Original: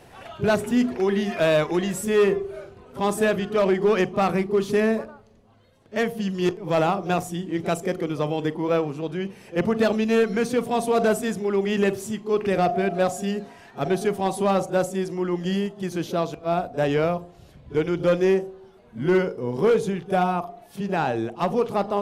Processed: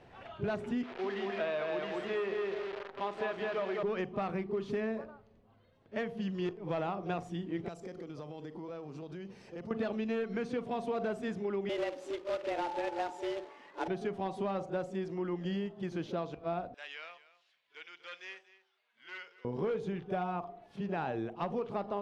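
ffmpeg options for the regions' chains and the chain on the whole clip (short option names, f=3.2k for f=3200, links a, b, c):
-filter_complex "[0:a]asettb=1/sr,asplit=3[a][b][c];[a]atrim=end=0.834[d];[b]atrim=start=0.83:end=3.83,asetpts=PTS-STARTPTS,afade=t=in:d=0.004:c=qsin,afade=t=out:st=2.996:d=0.004:c=qsin,asplit=2[e][f];[f]adelay=206,lowpass=f=5k:p=1,volume=-3dB,asplit=2[g][h];[h]adelay=206,lowpass=f=5k:p=1,volume=0.35,asplit=2[i][j];[j]adelay=206,lowpass=f=5k:p=1,volume=0.35,asplit=2[k][l];[l]adelay=206,lowpass=f=5k:p=1,volume=0.35,asplit=2[m][n];[n]adelay=206,lowpass=f=5k:p=1,volume=0.35[o];[e][g][i][k][m][o]amix=inputs=6:normalize=0,atrim=end_sample=132300,acrusher=bits=6:dc=4:mix=0:aa=0.000001,acrossover=split=380 4900:gain=0.2 1 0.141[p][q][r];[p][q][r]amix=inputs=3:normalize=0[s];[c]atrim=start=3.826[t];[d][s]acrossfade=d=0.004:c1=hsin:c2=qsin[u];[u][t]acrossfade=d=0.004:c1=qsin:c2=hsin,asettb=1/sr,asplit=3[v][w][x];[v]atrim=end=7.684[y];[w]atrim=start=7.68:end=9.71,asetpts=PTS-STARTPTS,afade=t=in:d=0.004:c=qsin,afade=t=out:st=2.026:d=0.004:c=qsin,highshelf=f=3.8k:t=q:w=1.5:g=7.5,acompressor=threshold=-32dB:ratio=8:attack=3.2:release=140:knee=1:detection=peak[z];[x]atrim=start=9.706[aa];[y][z]acrossfade=d=0.004:c1=hsin:c2=qsin[ab];[ab][aa]acrossfade=d=0.004:c1=qsin:c2=hsin,asettb=1/sr,asplit=3[ac][ad][ae];[ac]atrim=end=11.694[af];[ad]atrim=start=11.69:end=13.88,asetpts=PTS-STARTPTS,afade=t=in:d=0.004:c=qsin,afade=t=out:st=2.186:d=0.004:c=qsin,afreqshift=170,acrusher=bits=2:mode=log:mix=0:aa=0.000001[ag];[ae]atrim=start=13.876[ah];[af][ag]acrossfade=d=0.004:c1=hsin:c2=qsin[ai];[ai][ah]acrossfade=d=0.004:c1=qsin:c2=hsin,asettb=1/sr,asplit=3[aj][ak][al];[aj]atrim=end=16.744[am];[ak]atrim=start=16.74:end=19.45,asetpts=PTS-STARTPTS,afade=t=in:d=0.004:c=qsin,afade=t=out:st=2.706:d=0.004:c=qsin,asuperpass=centerf=5100:order=4:qfactor=0.57,aecho=1:1:236:0.141,atrim=end_sample=119511[an];[al]atrim=start=19.446[ao];[am][an]acrossfade=d=0.004:c1=hsin:c2=qsin[ap];[ap][ao]acrossfade=d=0.004:c1=qsin:c2=hsin,acompressor=threshold=-23dB:ratio=6,lowpass=3.6k,volume=-8dB"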